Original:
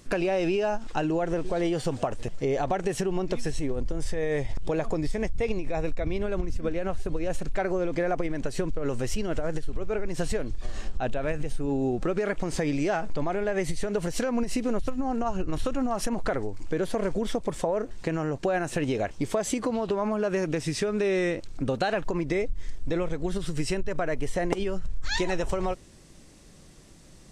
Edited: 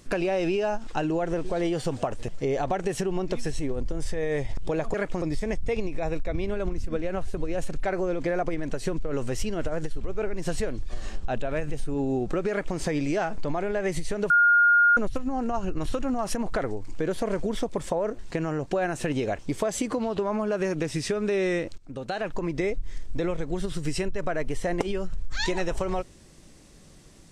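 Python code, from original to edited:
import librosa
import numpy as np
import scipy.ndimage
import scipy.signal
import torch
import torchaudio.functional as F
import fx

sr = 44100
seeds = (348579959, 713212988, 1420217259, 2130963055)

y = fx.edit(x, sr, fx.duplicate(start_s=12.22, length_s=0.28, to_s=4.94),
    fx.bleep(start_s=14.02, length_s=0.67, hz=1420.0, db=-15.0),
    fx.fade_in_from(start_s=21.5, length_s=0.94, curve='qsin', floor_db=-21.0), tone=tone)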